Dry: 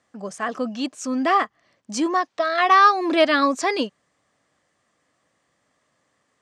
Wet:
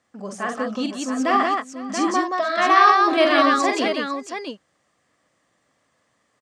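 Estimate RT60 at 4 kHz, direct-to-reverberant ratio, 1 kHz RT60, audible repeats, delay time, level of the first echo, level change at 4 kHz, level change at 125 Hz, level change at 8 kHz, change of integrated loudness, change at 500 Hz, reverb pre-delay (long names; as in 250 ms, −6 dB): no reverb audible, no reverb audible, no reverb audible, 4, 46 ms, −5.5 dB, +1.5 dB, can't be measured, +1.5 dB, +1.0 dB, +1.5 dB, no reverb audible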